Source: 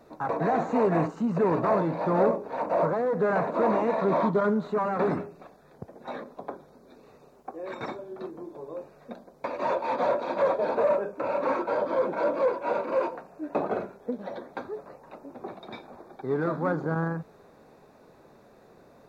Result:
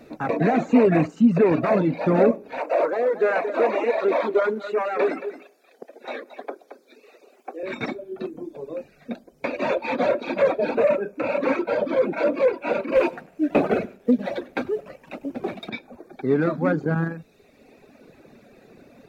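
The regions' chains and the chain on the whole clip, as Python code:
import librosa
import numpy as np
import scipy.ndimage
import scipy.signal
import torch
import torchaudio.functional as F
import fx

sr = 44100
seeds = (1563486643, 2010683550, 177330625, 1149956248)

y = fx.chain(x, sr, fx.highpass(hz=360.0, slope=24),
    fx.echo_single(ms=223, db=-8.5), at=(2.6, 7.63))
y = fx.chain(y, sr, fx.leveller(passes=1),
    fx.echo_single(ms=100, db=-12.5), at=(12.95, 15.7))
y = fx.dereverb_blind(y, sr, rt60_s=1.1)
y = fx.graphic_eq_15(y, sr, hz=(250, 1000, 2500), db=(6, -9, 9))
y = F.gain(torch.from_numpy(y), 6.5).numpy()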